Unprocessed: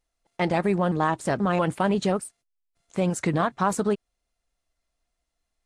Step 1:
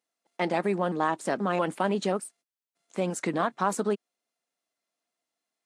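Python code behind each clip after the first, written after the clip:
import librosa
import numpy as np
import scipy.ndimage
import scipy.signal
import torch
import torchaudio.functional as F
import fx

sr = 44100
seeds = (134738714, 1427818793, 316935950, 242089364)

y = scipy.signal.sosfilt(scipy.signal.butter(4, 200.0, 'highpass', fs=sr, output='sos'), x)
y = y * 10.0 ** (-2.5 / 20.0)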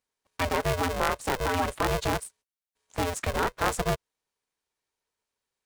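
y = x * np.sign(np.sin(2.0 * np.pi * 260.0 * np.arange(len(x)) / sr))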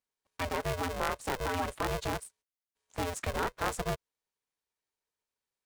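y = fx.rider(x, sr, range_db=10, speed_s=0.5)
y = y * 10.0 ** (-5.0 / 20.0)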